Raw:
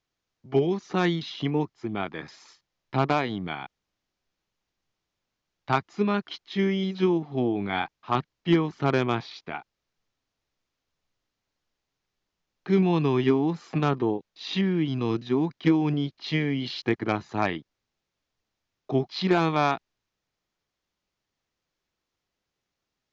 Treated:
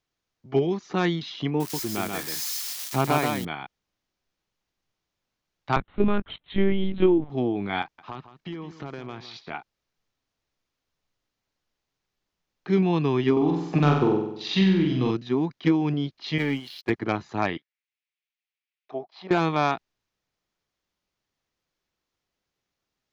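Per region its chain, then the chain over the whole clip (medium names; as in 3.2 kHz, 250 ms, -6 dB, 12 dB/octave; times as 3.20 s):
1.60–3.45 s: zero-crossing glitches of -25 dBFS + delay 133 ms -4 dB
5.76–7.30 s: bass shelf 460 Hz +6 dB + LPC vocoder at 8 kHz pitch kept
7.82–9.50 s: compression 8:1, threshold -32 dBFS + delay 162 ms -13 dB
13.32–15.11 s: transient shaper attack +5 dB, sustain -2 dB + flutter echo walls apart 8.1 m, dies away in 0.77 s
16.38–16.90 s: gate -27 dBFS, range -13 dB + bass shelf 320 Hz -7.5 dB + waveshaping leveller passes 2
17.57–19.31 s: gate -50 dBFS, range -8 dB + auto-wah 640–2400 Hz, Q 2.7, down, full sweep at -25.5 dBFS + treble shelf 2 kHz +9 dB
whole clip: none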